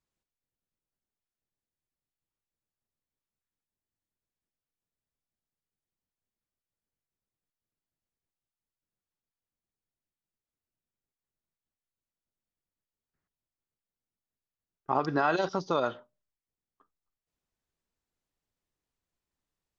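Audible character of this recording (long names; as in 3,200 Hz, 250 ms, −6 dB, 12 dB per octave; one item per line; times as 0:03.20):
background noise floor −94 dBFS
spectral slope −4.0 dB per octave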